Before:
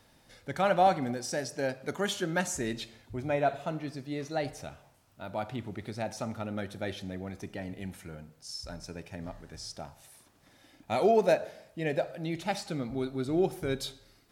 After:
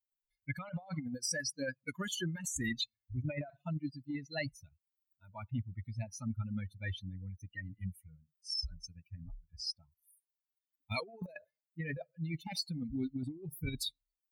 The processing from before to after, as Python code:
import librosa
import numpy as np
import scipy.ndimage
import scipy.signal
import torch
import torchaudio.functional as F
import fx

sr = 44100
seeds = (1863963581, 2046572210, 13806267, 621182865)

y = fx.bin_expand(x, sr, power=3.0)
y = fx.over_compress(y, sr, threshold_db=-45.0, ratio=-1.0)
y = F.gain(torch.from_numpy(y), 5.0).numpy()